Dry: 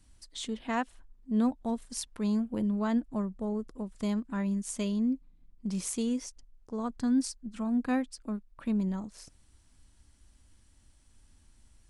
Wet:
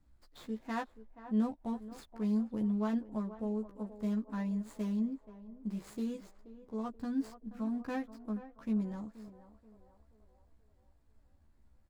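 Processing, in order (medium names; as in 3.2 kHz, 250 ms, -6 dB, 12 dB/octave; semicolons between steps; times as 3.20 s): median filter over 15 samples; doubling 14 ms -3.5 dB; band-passed feedback delay 479 ms, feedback 57%, band-pass 660 Hz, level -12 dB; trim -6.5 dB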